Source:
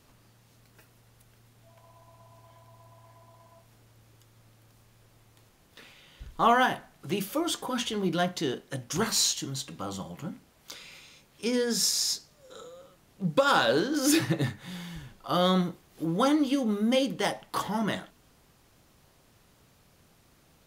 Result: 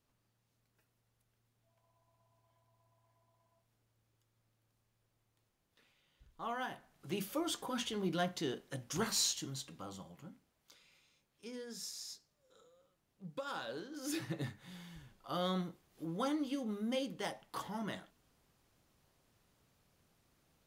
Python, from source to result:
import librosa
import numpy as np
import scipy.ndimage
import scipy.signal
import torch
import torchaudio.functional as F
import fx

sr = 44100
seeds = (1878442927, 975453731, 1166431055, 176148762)

y = fx.gain(x, sr, db=fx.line((6.43, -20.0), (7.2, -8.0), (9.45, -8.0), (10.75, -19.5), (13.9, -19.5), (14.4, -12.0)))